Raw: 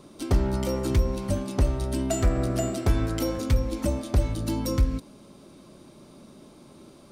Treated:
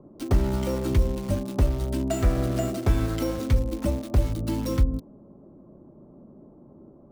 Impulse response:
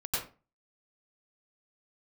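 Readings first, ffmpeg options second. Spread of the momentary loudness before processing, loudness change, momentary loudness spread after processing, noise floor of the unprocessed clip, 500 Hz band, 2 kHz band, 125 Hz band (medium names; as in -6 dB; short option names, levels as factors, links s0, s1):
4 LU, +0.5 dB, 4 LU, -51 dBFS, 0.0 dB, -0.5 dB, +1.0 dB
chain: -filter_complex "[0:a]bass=f=250:g=1,treble=f=4000:g=-6,acrossover=split=240|940[s0][s1][s2];[s2]acrusher=bits=6:mix=0:aa=0.000001[s3];[s0][s1][s3]amix=inputs=3:normalize=0"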